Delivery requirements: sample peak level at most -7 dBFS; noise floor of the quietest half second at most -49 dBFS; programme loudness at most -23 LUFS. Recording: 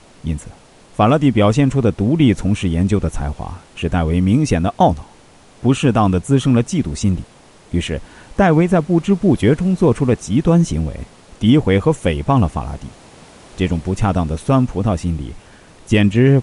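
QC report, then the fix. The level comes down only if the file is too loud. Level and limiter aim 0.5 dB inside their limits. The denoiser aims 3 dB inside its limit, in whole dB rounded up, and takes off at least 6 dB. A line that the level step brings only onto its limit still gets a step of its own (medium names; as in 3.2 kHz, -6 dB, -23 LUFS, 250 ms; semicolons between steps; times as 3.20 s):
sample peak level -2.0 dBFS: fail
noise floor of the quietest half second -46 dBFS: fail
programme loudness -16.5 LUFS: fail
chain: trim -7 dB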